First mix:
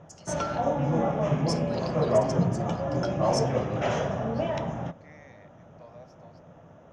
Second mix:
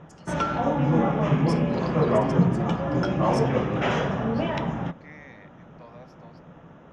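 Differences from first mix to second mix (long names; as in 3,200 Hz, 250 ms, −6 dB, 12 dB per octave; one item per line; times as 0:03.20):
second voice +8.0 dB
background +7.0 dB
master: add graphic EQ with 15 bands 100 Hz −9 dB, 630 Hz −9 dB, 6,300 Hz −10 dB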